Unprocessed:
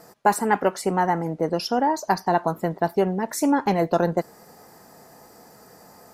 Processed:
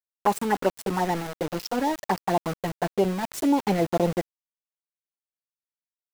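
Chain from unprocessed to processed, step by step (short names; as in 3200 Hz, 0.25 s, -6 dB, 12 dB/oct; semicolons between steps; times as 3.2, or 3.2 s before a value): envelope flanger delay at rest 9.3 ms, full sweep at -16 dBFS; sample gate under -29.5 dBFS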